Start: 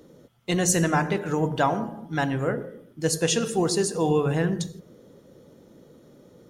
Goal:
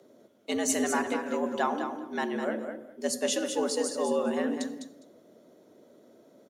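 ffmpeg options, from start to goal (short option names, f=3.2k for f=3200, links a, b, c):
-filter_complex "[0:a]afreqshift=88,asplit=2[a][b];[b]aecho=0:1:204|408:0.422|0.0633[c];[a][c]amix=inputs=2:normalize=0,volume=-6dB"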